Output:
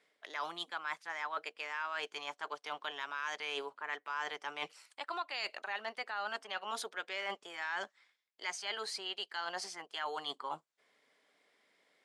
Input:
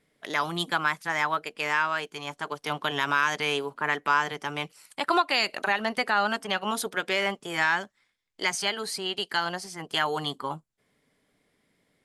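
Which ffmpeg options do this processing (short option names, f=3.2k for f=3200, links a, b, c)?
-af "highpass=540,lowpass=6.6k,areverse,acompressor=threshold=-39dB:ratio=5,areverse,volume=1.5dB"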